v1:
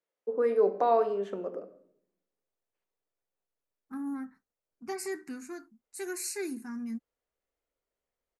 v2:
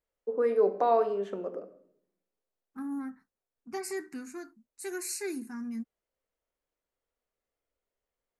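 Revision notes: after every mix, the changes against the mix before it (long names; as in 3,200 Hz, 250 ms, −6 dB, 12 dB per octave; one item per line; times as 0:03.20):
second voice: entry −1.15 s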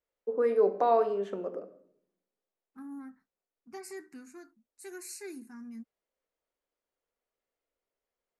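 second voice −7.5 dB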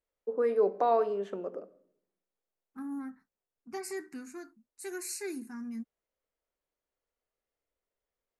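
first voice: send −6.0 dB
second voice +5.0 dB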